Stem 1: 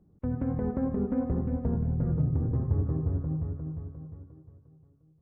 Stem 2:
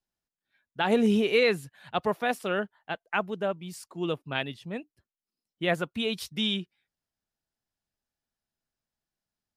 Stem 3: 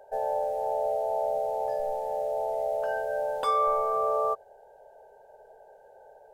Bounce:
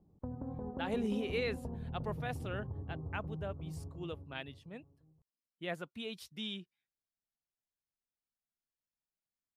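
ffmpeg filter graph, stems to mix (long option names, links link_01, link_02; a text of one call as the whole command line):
ffmpeg -i stem1.wav -i stem2.wav -filter_complex "[0:a]acompressor=threshold=-34dB:ratio=6,lowpass=frequency=920:width_type=q:width=2.2,volume=-5.5dB[link_01];[1:a]volume=-13dB[link_02];[link_01][link_02]amix=inputs=2:normalize=0" out.wav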